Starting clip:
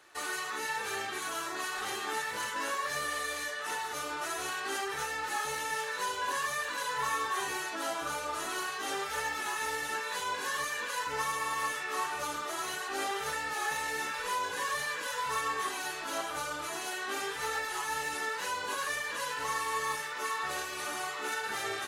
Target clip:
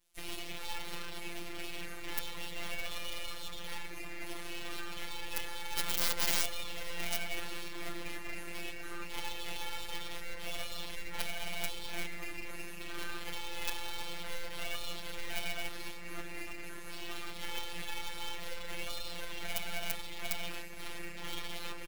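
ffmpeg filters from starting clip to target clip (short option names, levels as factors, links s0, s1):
-filter_complex "[0:a]highpass=f=55:w=0.5412,highpass=f=55:w=1.3066,afwtdn=0.0178,acrossover=split=320|5200[s0][s1][s2];[s1]aeval=exprs='abs(val(0))':c=same[s3];[s0][s3][s2]amix=inputs=3:normalize=0,asettb=1/sr,asplit=3[s4][s5][s6];[s4]atrim=end=5.774[s7];[s5]atrim=start=5.77:end=6.44,asetpts=PTS-STARTPTS,afade=t=in:d=0.004:c=qsin,afade=t=out:st=0.666:d=0.004:c=qsin,acontrast=33[s8];[s6]atrim=start=6.436[s9];[s7][s8]acrossfade=d=0.004:c1=hsin:c2=qsin[s10];[s10][s9]acrossfade=d=0.004:c1=qsin:c2=hsin,aeval=exprs='(mod(14.1*val(0)+1,2)-1)/14.1':c=same,afftfilt=real='hypot(re,im)*cos(PI*b)':imag='0':win_size=1024:overlap=0.75,aeval=exprs='0.106*(cos(1*acos(clip(val(0)/0.106,-1,1)))-cos(1*PI/2))+0.0106*(cos(3*acos(clip(val(0)/0.106,-1,1)))-cos(3*PI/2))+0.000596*(cos(4*acos(clip(val(0)/0.106,-1,1)))-cos(4*PI/2))+0.00531*(cos(5*acos(clip(val(0)/0.106,-1,1)))-cos(5*PI/2))+0.000841*(cos(8*acos(clip(val(0)/0.106,-1,1)))-cos(8*PI/2))':c=same,aemphasis=mode=production:type=50fm,asplit=2[s11][s12];[s12]adelay=484,volume=0.178,highshelf=f=4000:g=-10.9[s13];[s11][s13]amix=inputs=2:normalize=0,adynamicequalizer=threshold=0.00141:dfrequency=5000:dqfactor=0.7:tfrequency=5000:tqfactor=0.7:attack=5:release=100:ratio=0.375:range=1.5:mode=cutabove:tftype=highshelf,volume=1.26"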